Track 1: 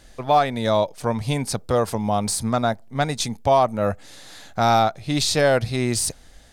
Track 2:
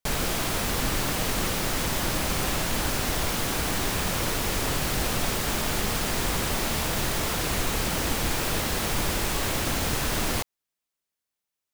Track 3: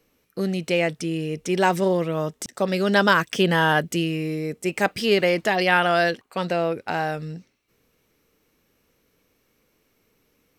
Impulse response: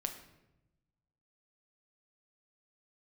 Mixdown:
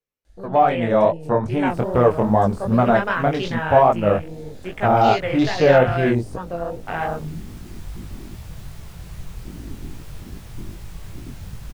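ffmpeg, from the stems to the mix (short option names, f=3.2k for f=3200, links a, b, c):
-filter_complex "[0:a]deesser=0.8,equalizer=f=470:w=1:g=3.5,adelay=250,volume=2.5dB[a];[1:a]adelay=1600,volume=-13dB[b];[2:a]equalizer=f=270:t=o:w=0.77:g=-8.5,volume=-5dB[c];[a][b][c]amix=inputs=3:normalize=0,afwtdn=0.0251,dynaudnorm=f=480:g=3:m=13dB,flanger=delay=17:depth=7.2:speed=2.5"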